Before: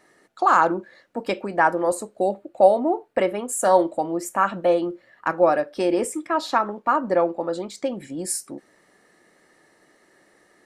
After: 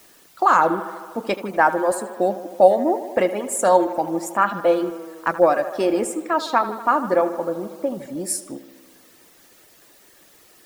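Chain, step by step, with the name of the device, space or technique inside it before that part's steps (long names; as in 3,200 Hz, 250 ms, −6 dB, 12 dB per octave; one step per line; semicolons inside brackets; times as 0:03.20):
0:07.35–0:07.92: low-pass filter 1,300 Hz
plain cassette with noise reduction switched in (one half of a high-frequency compander decoder only; tape wow and flutter; white noise bed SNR 30 dB)
reverb reduction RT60 0.68 s
tape delay 78 ms, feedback 77%, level −13 dB, low-pass 5,300 Hz
level +2 dB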